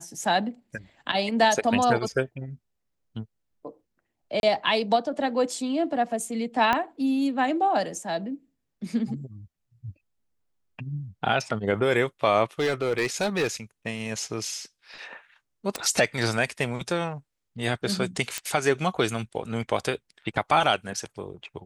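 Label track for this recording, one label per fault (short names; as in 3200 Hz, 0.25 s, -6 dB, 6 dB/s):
4.400000	4.430000	gap 31 ms
6.730000	6.730000	pop -10 dBFS
12.590000	13.470000	clipped -19.5 dBFS
15.760000	15.760000	pop
18.380000	18.380000	pop -11 dBFS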